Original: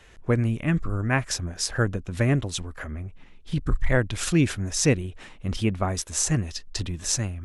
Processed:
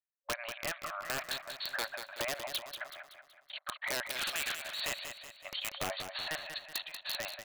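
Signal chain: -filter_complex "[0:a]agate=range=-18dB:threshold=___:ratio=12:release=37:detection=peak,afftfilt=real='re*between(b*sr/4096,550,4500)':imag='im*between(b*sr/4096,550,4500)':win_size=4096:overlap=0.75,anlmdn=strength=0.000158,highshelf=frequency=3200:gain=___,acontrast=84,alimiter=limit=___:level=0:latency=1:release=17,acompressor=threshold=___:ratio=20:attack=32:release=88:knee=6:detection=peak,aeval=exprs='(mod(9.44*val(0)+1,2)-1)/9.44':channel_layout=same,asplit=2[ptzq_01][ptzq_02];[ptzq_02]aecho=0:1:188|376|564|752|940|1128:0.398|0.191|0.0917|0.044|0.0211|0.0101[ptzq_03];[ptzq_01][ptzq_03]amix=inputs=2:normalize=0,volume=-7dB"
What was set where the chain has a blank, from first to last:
-36dB, 5.5, -12dB, -27dB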